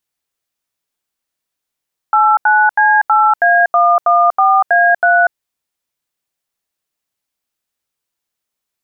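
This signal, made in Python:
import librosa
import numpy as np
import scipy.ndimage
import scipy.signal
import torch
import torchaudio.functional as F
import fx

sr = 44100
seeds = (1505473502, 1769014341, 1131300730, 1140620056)

y = fx.dtmf(sr, digits='89C8A114A3', tone_ms=241, gap_ms=81, level_db=-10.0)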